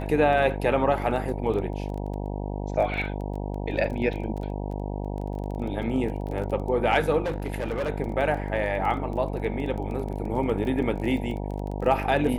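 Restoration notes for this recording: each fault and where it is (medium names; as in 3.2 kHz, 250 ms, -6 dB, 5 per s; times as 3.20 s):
buzz 50 Hz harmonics 19 -31 dBFS
crackle 19 per s -33 dBFS
7.24–7.90 s: clipped -24 dBFS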